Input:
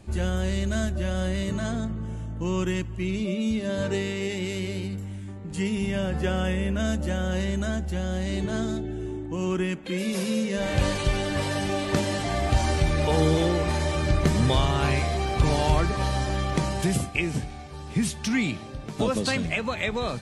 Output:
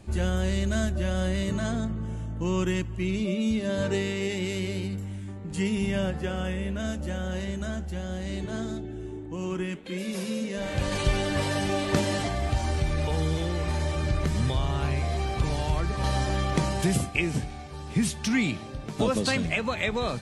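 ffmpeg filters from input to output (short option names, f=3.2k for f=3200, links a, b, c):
-filter_complex "[0:a]asplit=3[a][b][c];[a]afade=t=out:st=6.1:d=0.02[d];[b]flanger=delay=5.3:depth=7.8:regen=-83:speed=1.6:shape=triangular,afade=t=in:st=6.1:d=0.02,afade=t=out:st=10.91:d=0.02[e];[c]afade=t=in:st=10.91:d=0.02[f];[d][e][f]amix=inputs=3:normalize=0,asettb=1/sr,asplit=3[g][h][i];[g]atrim=end=12.274[j];[h]atrim=start=12.27:end=16.04,asetpts=PTS-STARTPTS,afade=t=in:d=0.004:c=qsin,afade=t=out:st=3.766:d=0.004:c=qsin,acrossover=split=140|1100[k][l][m];[k]acompressor=threshold=-23dB:ratio=4[n];[l]acompressor=threshold=-32dB:ratio=4[o];[m]acompressor=threshold=-38dB:ratio=4[p];[n][o][p]amix=inputs=3:normalize=0[q];[i]atrim=start=16.036[r];[j][q]acrossfade=d=0.004:c1=hsin:c2=qsin[s];[s][r]acrossfade=d=0.004:c1=qsin:c2=hsin"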